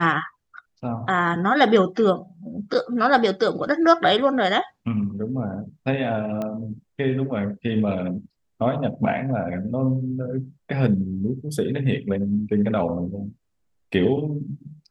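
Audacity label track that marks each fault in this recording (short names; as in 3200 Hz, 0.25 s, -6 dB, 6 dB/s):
6.420000	6.420000	pop -17 dBFS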